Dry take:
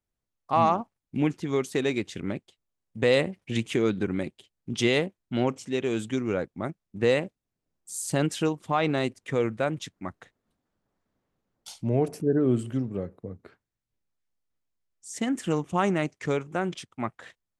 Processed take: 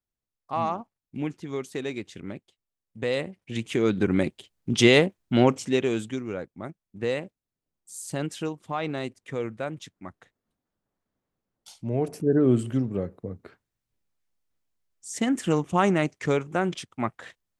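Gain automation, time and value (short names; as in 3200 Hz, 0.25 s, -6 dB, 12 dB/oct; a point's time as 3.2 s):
3.42 s -5.5 dB
4.16 s +6.5 dB
5.67 s +6.5 dB
6.25 s -5 dB
11.74 s -5 dB
12.4 s +3 dB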